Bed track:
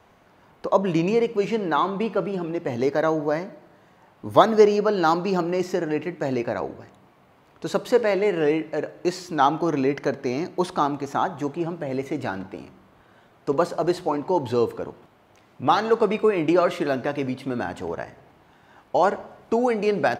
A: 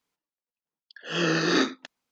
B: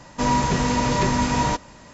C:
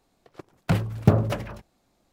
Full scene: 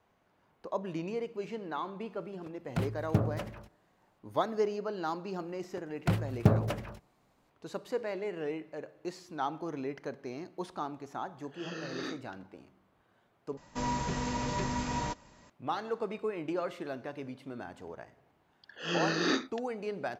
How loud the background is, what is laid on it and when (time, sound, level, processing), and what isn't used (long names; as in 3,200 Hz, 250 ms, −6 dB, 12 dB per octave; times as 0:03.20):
bed track −15 dB
0:02.07: mix in C −10 dB + pitch vibrato 6.9 Hz 14 cents
0:05.38: mix in C −6 dB
0:10.48: mix in A −17 dB
0:13.57: overwrite with B −12.5 dB
0:17.73: mix in A −6.5 dB